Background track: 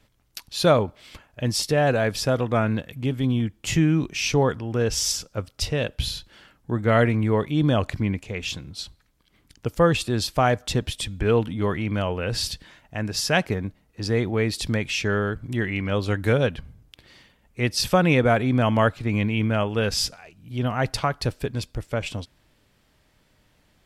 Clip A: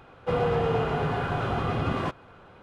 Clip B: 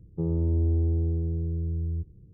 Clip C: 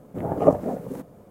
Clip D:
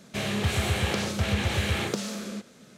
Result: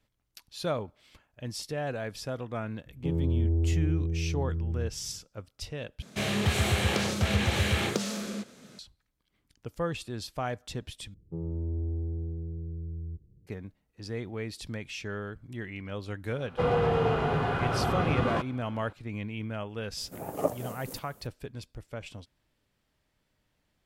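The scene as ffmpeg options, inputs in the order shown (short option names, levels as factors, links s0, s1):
-filter_complex "[2:a]asplit=2[s0][s1];[0:a]volume=0.224[s2];[3:a]crystalizer=i=9.5:c=0[s3];[s2]asplit=3[s4][s5][s6];[s4]atrim=end=6.024[s7];[4:a]atrim=end=2.77[s8];[s5]atrim=start=8.786:end=11.144[s9];[s1]atrim=end=2.33,asetpts=PTS-STARTPTS,volume=0.398[s10];[s6]atrim=start=13.466[s11];[s0]atrim=end=2.33,asetpts=PTS-STARTPTS,volume=0.794,afade=t=in:d=0.004:c=hsin,afade=t=out:st=2.326:d=0.004:c=hsin,adelay=2860[s12];[1:a]atrim=end=2.62,asetpts=PTS-STARTPTS,volume=0.944,afade=t=in:d=0.004:c=hsin,afade=t=out:st=2.616:d=0.004:c=hsin,adelay=16310[s13];[s3]atrim=end=1.3,asetpts=PTS-STARTPTS,volume=0.224,afade=t=in:d=0.004:c=hsin,afade=t=out:st=1.296:d=0.004:c=hsin,adelay=19970[s14];[s7][s8]acrossfade=d=0.004:c1=hsin:c2=hsin[s15];[s15][s9]acrossfade=d=0.004:c1=hsin:c2=hsin[s16];[s16][s10]acrossfade=d=0.004:c1=hsin:c2=hsin[s17];[s17][s11]acrossfade=d=0.004:c1=hsin:c2=hsin[s18];[s18][s12][s13][s14]amix=inputs=4:normalize=0"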